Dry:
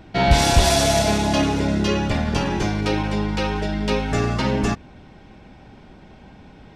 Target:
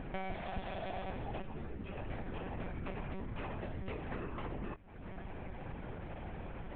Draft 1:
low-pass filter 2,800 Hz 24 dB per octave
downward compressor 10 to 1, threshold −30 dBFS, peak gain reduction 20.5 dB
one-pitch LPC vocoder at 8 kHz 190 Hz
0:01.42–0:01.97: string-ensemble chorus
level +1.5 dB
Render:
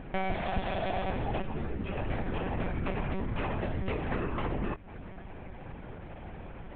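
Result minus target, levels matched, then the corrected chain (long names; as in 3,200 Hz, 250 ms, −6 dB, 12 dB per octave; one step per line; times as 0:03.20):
downward compressor: peak gain reduction −9 dB
low-pass filter 2,800 Hz 24 dB per octave
downward compressor 10 to 1, threshold −40 dBFS, peak gain reduction 29.5 dB
one-pitch LPC vocoder at 8 kHz 190 Hz
0:01.42–0:01.97: string-ensemble chorus
level +1.5 dB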